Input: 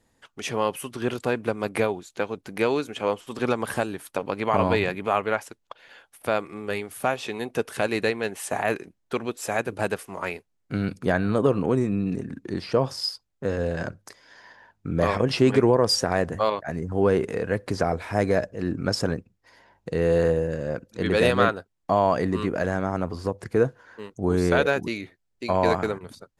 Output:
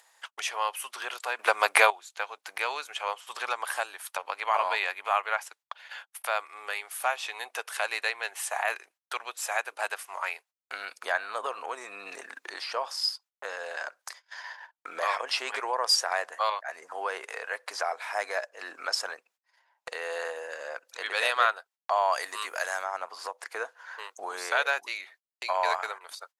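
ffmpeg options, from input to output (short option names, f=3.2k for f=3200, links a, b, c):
-filter_complex "[0:a]asplit=3[a][b][c];[a]afade=t=out:st=22.12:d=0.02[d];[b]aemphasis=mode=production:type=75fm,afade=t=in:st=22.12:d=0.02,afade=t=out:st=22.83:d=0.02[e];[c]afade=t=in:st=22.83:d=0.02[f];[d][e][f]amix=inputs=3:normalize=0,asplit=3[g][h][i];[g]atrim=end=1.392[j];[h]atrim=start=1.388:end=1.902,asetpts=PTS-STARTPTS,volume=11.5dB[k];[i]atrim=start=1.898[l];[j][k]acrossfade=d=0.004:c1=hsin:c2=hsin[m];[m][l]acrossfade=d=0.004:c1=hsin:c2=hsin,agate=range=-33dB:threshold=-50dB:ratio=16:detection=peak,highpass=f=770:w=0.5412,highpass=f=770:w=1.3066,acompressor=mode=upward:threshold=-31dB:ratio=2.5"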